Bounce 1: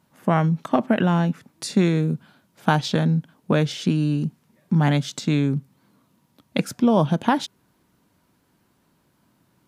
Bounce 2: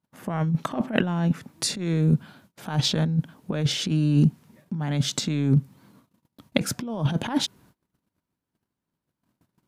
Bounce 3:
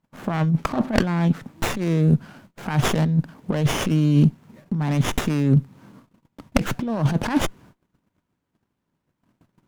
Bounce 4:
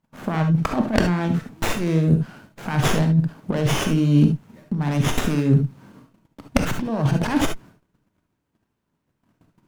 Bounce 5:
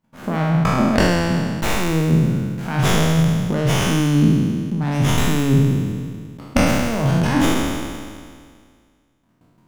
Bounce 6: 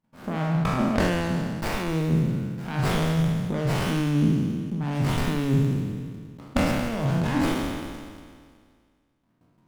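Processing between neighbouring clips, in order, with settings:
compressor whose output falls as the input rises −23 dBFS, ratio −0.5; low-shelf EQ 180 Hz +4.5 dB; noise gate −53 dBFS, range −27 dB
dynamic equaliser 3,100 Hz, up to +5 dB, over −42 dBFS, Q 1.1; in parallel at +1 dB: downward compressor, threshold −30 dBFS, peak gain reduction 15 dB; on the sum: windowed peak hold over 9 samples; level +1 dB
reverb whose tail is shaped and stops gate 90 ms rising, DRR 5 dB
peak hold with a decay on every bin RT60 1.99 s; level −1 dB
windowed peak hold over 5 samples; level −6.5 dB

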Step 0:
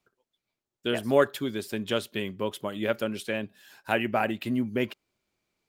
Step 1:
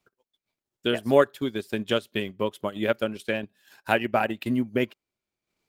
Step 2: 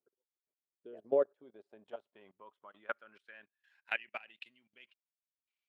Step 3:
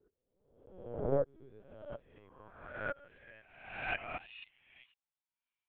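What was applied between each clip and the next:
transient designer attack +3 dB, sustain −10 dB; level +1.5 dB
output level in coarse steps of 21 dB; band-pass filter sweep 410 Hz → 2,800 Hz, 0:00.76–0:04.38; level −2.5 dB
peak hold with a rise ahead of every peak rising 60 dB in 0.89 s; high-pass filter sweep 270 Hz → 820 Hz, 0:01.77–0:04.52; linear-prediction vocoder at 8 kHz pitch kept; level −5.5 dB

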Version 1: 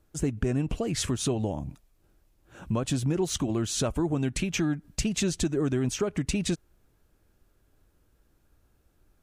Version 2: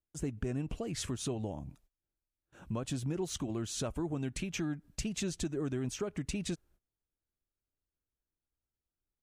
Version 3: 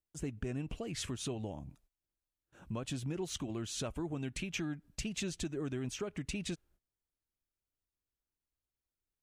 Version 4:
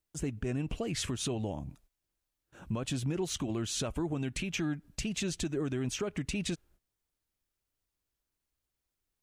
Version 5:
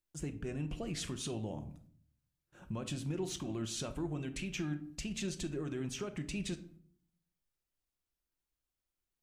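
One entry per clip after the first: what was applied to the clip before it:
noise gate −54 dBFS, range −20 dB; level −8.5 dB
dynamic equaliser 2,700 Hz, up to +5 dB, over −58 dBFS, Q 1.1; level −3 dB
brickwall limiter −30 dBFS, peak gain reduction 4.5 dB; level +6 dB
rectangular room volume 700 cubic metres, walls furnished, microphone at 0.91 metres; level −6 dB

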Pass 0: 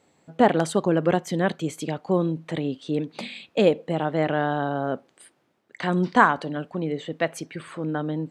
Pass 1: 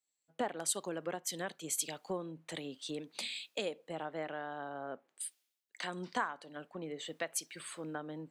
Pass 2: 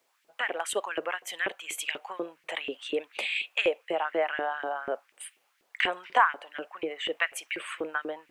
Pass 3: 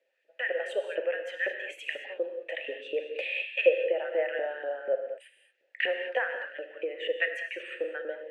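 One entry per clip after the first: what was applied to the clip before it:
RIAA equalisation recording; downward compressor 5 to 1, threshold −32 dBFS, peak gain reduction 19.5 dB; multiband upward and downward expander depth 100%; level −5 dB
high shelf with overshoot 3,500 Hz −8.5 dB, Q 3; background noise pink −79 dBFS; auto-filter high-pass saw up 4.1 Hz 340–2,400 Hz; level +7.5 dB
formant filter e; reverb whose tail is shaped and stops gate 250 ms flat, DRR 5 dB; level +7.5 dB

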